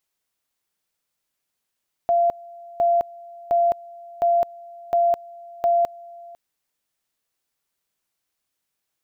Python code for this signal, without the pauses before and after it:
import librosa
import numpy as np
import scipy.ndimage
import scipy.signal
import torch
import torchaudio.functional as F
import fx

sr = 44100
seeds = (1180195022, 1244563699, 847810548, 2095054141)

y = fx.two_level_tone(sr, hz=688.0, level_db=-15.0, drop_db=23.0, high_s=0.21, low_s=0.5, rounds=6)